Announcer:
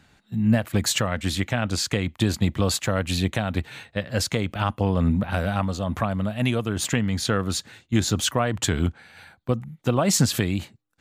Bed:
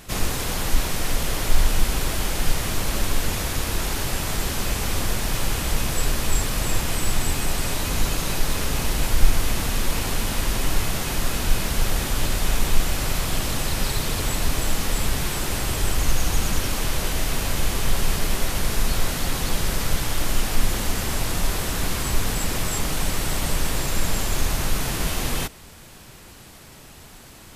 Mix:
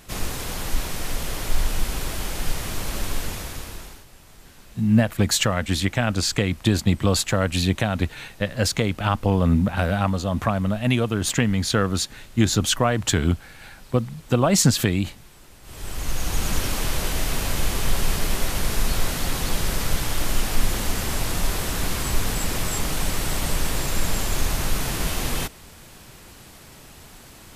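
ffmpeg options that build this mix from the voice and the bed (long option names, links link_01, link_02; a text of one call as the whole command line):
ffmpeg -i stem1.wav -i stem2.wav -filter_complex "[0:a]adelay=4450,volume=2.5dB[link_01];[1:a]volume=19dB,afade=type=out:start_time=3.16:duration=0.89:silence=0.105925,afade=type=in:start_time=15.62:duration=0.93:silence=0.0707946[link_02];[link_01][link_02]amix=inputs=2:normalize=0" out.wav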